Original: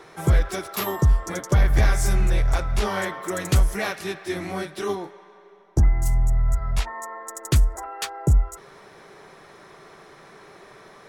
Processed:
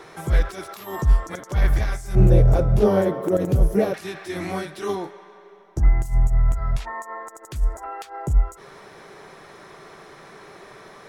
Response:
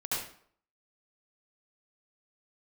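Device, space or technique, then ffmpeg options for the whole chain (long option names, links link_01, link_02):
de-esser from a sidechain: -filter_complex "[0:a]asettb=1/sr,asplit=3[link_01][link_02][link_03];[link_01]atrim=end=2.154[link_04];[link_02]atrim=start=2.15:end=3.94,asetpts=PTS-STARTPTS,afade=type=in:duration=0.004:curve=qsin,afade=type=out:start_time=1.786:duration=0.004:curve=qsin,equalizer=frequency=125:width_type=o:width=1:gain=10,equalizer=frequency=250:width_type=o:width=1:gain=6,equalizer=frequency=500:width_type=o:width=1:gain=11,equalizer=frequency=1000:width_type=o:width=1:gain=-5,equalizer=frequency=2000:width_type=o:width=1:gain=-10,equalizer=frequency=4000:width_type=o:width=1:gain=-7,equalizer=frequency=8000:width_type=o:width=1:gain=-9[link_05];[link_03]atrim=start=3.936[link_06];[link_04][link_05]acrossfade=duration=0.004:curve1=hsin:curve2=qsin[link_07];[link_07][link_06]acrossfade=duration=0.004:curve1=qsin:curve2=hsin,asplit=2[link_08][link_09];[link_09]highpass=frequency=4400:width=0.5412,highpass=frequency=4400:width=1.3066,apad=whole_len=488693[link_10];[link_08][link_10]sidechaincompress=threshold=-44dB:ratio=16:attack=2.1:release=77,volume=3dB"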